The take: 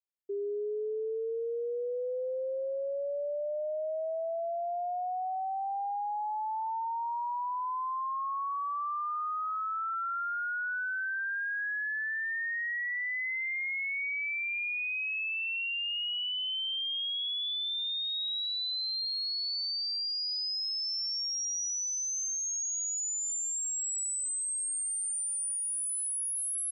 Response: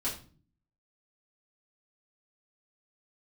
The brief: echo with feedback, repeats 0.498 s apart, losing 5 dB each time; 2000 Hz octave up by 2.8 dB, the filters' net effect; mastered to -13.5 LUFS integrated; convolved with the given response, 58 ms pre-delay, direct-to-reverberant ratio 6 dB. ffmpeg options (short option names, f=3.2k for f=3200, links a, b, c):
-filter_complex "[0:a]equalizer=f=2k:t=o:g=3.5,aecho=1:1:498|996|1494|1992|2490|2988|3486:0.562|0.315|0.176|0.0988|0.0553|0.031|0.0173,asplit=2[a][b];[1:a]atrim=start_sample=2205,adelay=58[c];[b][c]afir=irnorm=-1:irlink=0,volume=-10dB[d];[a][d]amix=inputs=2:normalize=0,volume=14.5dB"